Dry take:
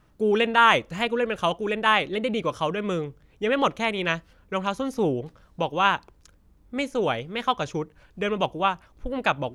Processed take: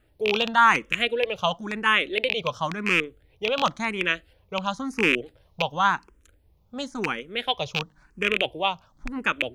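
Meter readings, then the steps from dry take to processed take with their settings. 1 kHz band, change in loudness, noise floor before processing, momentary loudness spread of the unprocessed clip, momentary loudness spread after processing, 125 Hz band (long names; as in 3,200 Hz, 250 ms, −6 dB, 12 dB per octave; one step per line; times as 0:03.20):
−1.0 dB, +0.5 dB, −59 dBFS, 11 LU, 10 LU, −3.5 dB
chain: loose part that buzzes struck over −31 dBFS, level −10 dBFS
dynamic equaliser 3,600 Hz, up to +7 dB, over −38 dBFS, Q 0.99
frequency shifter mixed with the dry sound +0.95 Hz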